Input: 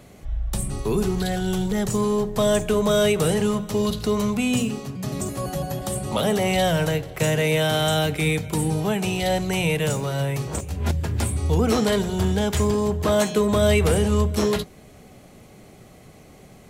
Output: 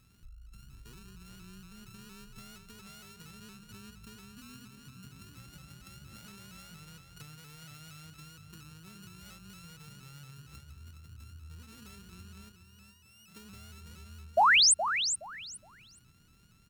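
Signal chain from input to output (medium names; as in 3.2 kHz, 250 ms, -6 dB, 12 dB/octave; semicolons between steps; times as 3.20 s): sorted samples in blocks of 32 samples; amplifier tone stack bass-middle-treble 6-0-2; compression 12:1, threshold -48 dBFS, peak gain reduction 18 dB; 12.52–13.28 s: feedback comb 120 Hz, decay 0.87 s, harmonics all, mix 90%; 14.37–14.74 s: painted sound rise 570–9900 Hz -21 dBFS; feedback delay 418 ms, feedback 20%, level -9 dB; vibrato with a chosen wave saw up 4.3 Hz, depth 100 cents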